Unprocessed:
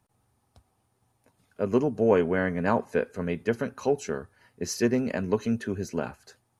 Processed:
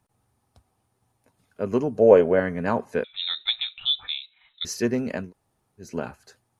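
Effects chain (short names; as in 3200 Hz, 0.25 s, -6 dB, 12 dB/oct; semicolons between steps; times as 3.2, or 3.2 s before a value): 1.98–2.4 bell 560 Hz +12 dB 0.71 oct; 3.04–4.65 inverted band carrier 3900 Hz; 5.25–5.85 room tone, crossfade 0.16 s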